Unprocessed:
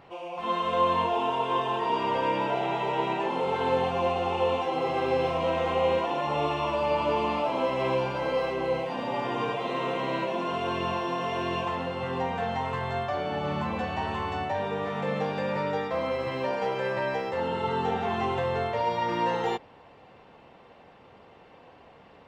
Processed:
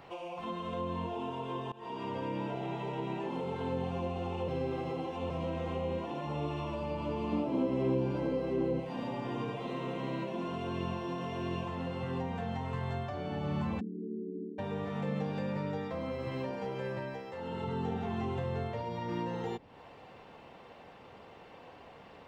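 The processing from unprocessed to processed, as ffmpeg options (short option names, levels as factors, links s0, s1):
-filter_complex "[0:a]asettb=1/sr,asplit=3[s0][s1][s2];[s0]atrim=end=7.324[s3];[s1]atrim=start=7.32:end=8.8,asetpts=PTS-STARTPTS,afade=t=in:d=0.004:c=qsin,afade=t=out:st=1.476:d=0.004:c=qsin,equalizer=f=320:w=1:g=9[s4];[s2]atrim=start=8.796[s5];[s3][s4]acrossfade=d=0.004:c1=hsin:c2=qsin[s6];[s6][s5]acrossfade=d=0.004:c1=qsin:c2=hsin,asplit=3[s7][s8][s9];[s7]afade=t=out:st=13.79:d=0.02[s10];[s8]asuperpass=centerf=280:order=20:qfactor=1.1,afade=t=in:st=13.79:d=0.02,afade=t=out:st=14.58:d=0.02[s11];[s9]afade=t=in:st=14.58:d=0.02[s12];[s10][s11][s12]amix=inputs=3:normalize=0,asplit=6[s13][s14][s15][s16][s17][s18];[s13]atrim=end=1.72,asetpts=PTS-STARTPTS,afade=t=out:st=1.716:d=0.004:c=hsin:silence=0.0891251[s19];[s14]atrim=start=1.72:end=4.482,asetpts=PTS-STARTPTS,afade=t=in:d=0.47:silence=0.0891251[s20];[s15]atrim=start=4.478:end=5.302,asetpts=PTS-STARTPTS,areverse[s21];[s16]atrim=start=5.298:end=17.26,asetpts=PTS-STARTPTS,afade=t=out:st=11.642:d=0.32:silence=0.334965[s22];[s17]atrim=start=17.26:end=17.38,asetpts=PTS-STARTPTS,volume=0.335[s23];[s18]atrim=start=17.38,asetpts=PTS-STARTPTS,afade=t=in:d=0.32:silence=0.334965[s24];[s19][s20]concat=n=2:v=0:a=1[s25];[s25][s21]acrossfade=d=0.004:c1=hsin:c2=hsin[s26];[s22][s23][s24]concat=n=3:v=0:a=1[s27];[s26][s27]acrossfade=d=0.004:c1=hsin:c2=hsin,highshelf=f=5200:g=5,acrossover=split=320[s28][s29];[s29]acompressor=threshold=0.00891:ratio=5[s30];[s28][s30]amix=inputs=2:normalize=0"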